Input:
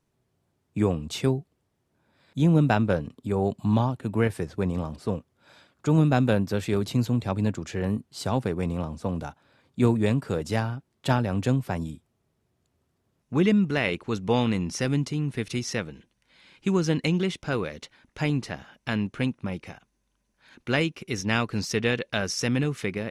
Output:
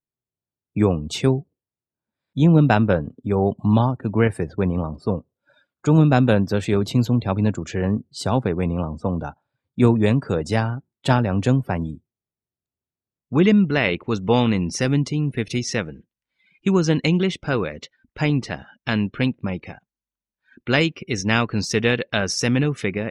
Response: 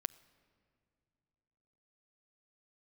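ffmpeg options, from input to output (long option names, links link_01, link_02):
-filter_complex "[0:a]asplit=3[link_01][link_02][link_03];[link_01]afade=type=out:start_time=18.47:duration=0.02[link_04];[link_02]adynamicequalizer=threshold=0.00631:dfrequency=4600:dqfactor=1.1:tfrequency=4600:tqfactor=1.1:attack=5:release=100:ratio=0.375:range=2:mode=boostabove:tftype=bell,afade=type=in:start_time=18.47:duration=0.02,afade=type=out:start_time=20.94:duration=0.02[link_05];[link_03]afade=type=in:start_time=20.94:duration=0.02[link_06];[link_04][link_05][link_06]amix=inputs=3:normalize=0,afftdn=noise_reduction=27:noise_floor=-47,volume=5.5dB"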